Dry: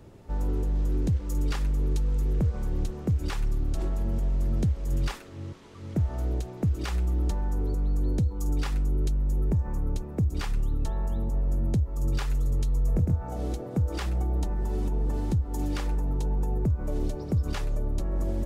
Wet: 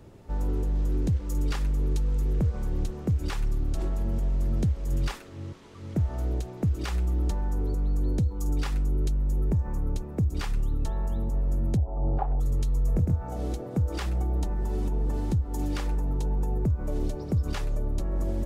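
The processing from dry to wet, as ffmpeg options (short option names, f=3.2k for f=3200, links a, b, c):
-filter_complex "[0:a]asettb=1/sr,asplit=3[a][b][c];[a]atrim=end=11.774[d];[b]atrim=start=11.77:end=12.4,asetpts=PTS-STARTPTS,afade=t=in:d=0.004:c=qsin,afade=t=out:st=0.626:d=0.004:c=qsin,lowpass=f=750:t=q:w=8.3[e];[c]atrim=start=12.396[f];[d][e]acrossfade=d=0.004:c1=hsin:c2=qsin[g];[g][f]acrossfade=d=0.004:c1=qsin:c2=hsin"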